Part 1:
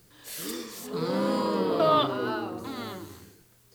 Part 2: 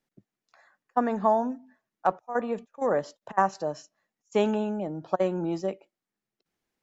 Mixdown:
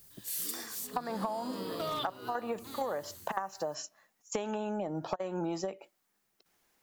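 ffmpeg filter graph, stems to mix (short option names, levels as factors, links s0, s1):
-filter_complex "[0:a]asoftclip=type=hard:threshold=0.2,volume=0.2[s0];[1:a]equalizer=f=910:t=o:w=2.9:g=12.5,acompressor=threshold=0.0891:ratio=4,volume=0.668[s1];[s0][s1]amix=inputs=2:normalize=0,lowshelf=f=190:g=8.5,crystalizer=i=5.5:c=0,acompressor=threshold=0.0282:ratio=10"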